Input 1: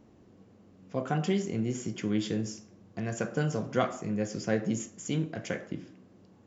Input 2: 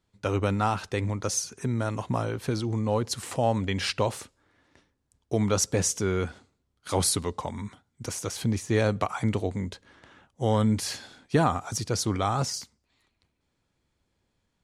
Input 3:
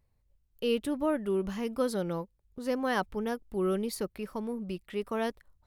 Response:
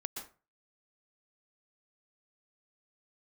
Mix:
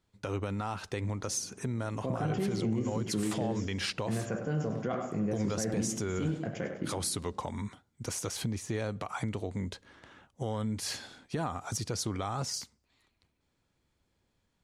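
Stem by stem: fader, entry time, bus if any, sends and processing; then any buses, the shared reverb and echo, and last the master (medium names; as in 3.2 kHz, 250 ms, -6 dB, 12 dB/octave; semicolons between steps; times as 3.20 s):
+1.5 dB, 1.10 s, no send, echo send -10 dB, treble shelf 2.3 kHz -11 dB; peak limiter -23 dBFS, peak gain reduction 8.5 dB
-1.0 dB, 0.00 s, no send, no echo send, compression 6:1, threshold -28 dBFS, peak gain reduction 10.5 dB
mute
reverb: none
echo: feedback delay 99 ms, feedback 45%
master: peak limiter -22.5 dBFS, peak gain reduction 6 dB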